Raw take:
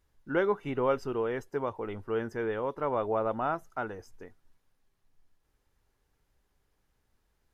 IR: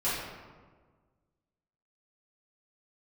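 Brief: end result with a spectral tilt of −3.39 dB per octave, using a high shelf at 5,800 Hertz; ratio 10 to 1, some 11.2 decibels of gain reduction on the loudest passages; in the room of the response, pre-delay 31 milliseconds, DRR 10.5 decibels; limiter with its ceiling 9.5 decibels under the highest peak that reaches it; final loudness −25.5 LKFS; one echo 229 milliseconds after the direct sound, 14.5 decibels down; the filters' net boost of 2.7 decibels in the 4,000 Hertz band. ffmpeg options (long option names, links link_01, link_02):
-filter_complex "[0:a]equalizer=frequency=4000:width_type=o:gain=7,highshelf=frequency=5800:gain=-9,acompressor=threshold=-33dB:ratio=10,alimiter=level_in=9dB:limit=-24dB:level=0:latency=1,volume=-9dB,aecho=1:1:229:0.188,asplit=2[link_01][link_02];[1:a]atrim=start_sample=2205,adelay=31[link_03];[link_02][link_03]afir=irnorm=-1:irlink=0,volume=-20dB[link_04];[link_01][link_04]amix=inputs=2:normalize=0,volume=17.5dB"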